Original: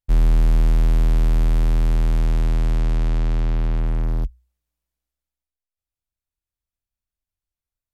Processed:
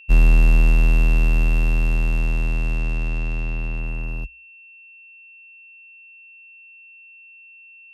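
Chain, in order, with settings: whine 2700 Hz -29 dBFS; upward expander 2.5:1, over -24 dBFS; gain +3 dB

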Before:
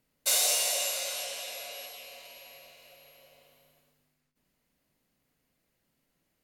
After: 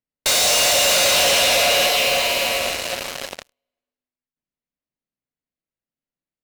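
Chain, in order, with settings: air absorption 73 m; notches 50/100/150 Hz; in parallel at -3 dB: fuzz box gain 57 dB, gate -55 dBFS; on the sum: gate -35 dBFS, range -24 dB; limiter -20 dBFS, peak gain reduction 8.5 dB; gain +6.5 dB

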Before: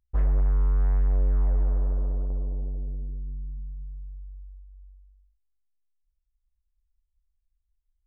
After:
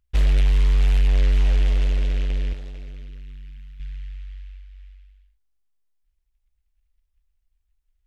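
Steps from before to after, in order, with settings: 2.53–3.8 tilt shelf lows -9.5 dB, about 730 Hz; noise-modulated delay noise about 2300 Hz, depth 0.16 ms; gain +5 dB

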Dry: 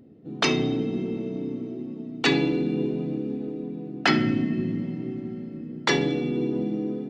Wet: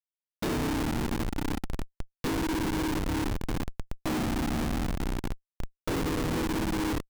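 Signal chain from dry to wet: notches 50/100/150/200/250/300/350/400/450 Hz; resonator 160 Hz, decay 0.2 s, harmonics all, mix 70%; whine 610 Hz -59 dBFS; limiter -24 dBFS, peak gain reduction 8 dB; graphic EQ 125/250/500/2000/4000 Hz -4/+11/+7/-6/+12 dB; feedback echo 64 ms, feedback 23%, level -11.5 dB; Schmitt trigger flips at -24 dBFS; gain -2.5 dB

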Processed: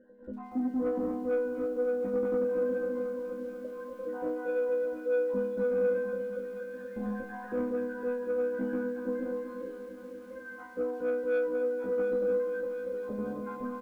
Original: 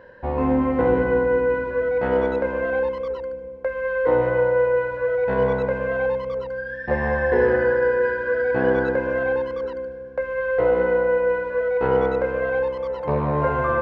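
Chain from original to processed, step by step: random spectral dropouts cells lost 65%; tilt shelf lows +5.5 dB, about 870 Hz; comb 3.8 ms, depth 68%; dynamic EQ 180 Hz, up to +4 dB, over -42 dBFS, Q 7.4; limiter -13 dBFS, peak gain reduction 9.5 dB; resonator bank G#3 minor, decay 0.75 s; small resonant body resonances 250/350/1400 Hz, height 16 dB, ringing for 30 ms; soft clip -25.5 dBFS, distortion -15 dB; on a send: thinning echo 0.717 s, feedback 75%, high-pass 960 Hz, level -20 dB; on the sum: lo-fi delay 0.239 s, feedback 80%, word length 10-bit, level -12 dB; gain +1.5 dB

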